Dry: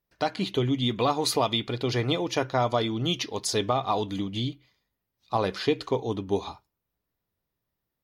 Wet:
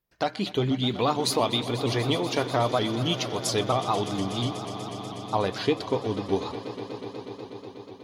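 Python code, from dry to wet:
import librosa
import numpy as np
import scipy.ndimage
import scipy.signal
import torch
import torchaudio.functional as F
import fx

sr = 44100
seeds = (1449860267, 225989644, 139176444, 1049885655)

y = fx.echo_swell(x, sr, ms=122, loudest=5, wet_db=-17)
y = fx.vibrato_shape(y, sr, shape='saw_up', rate_hz=4.3, depth_cents=100.0)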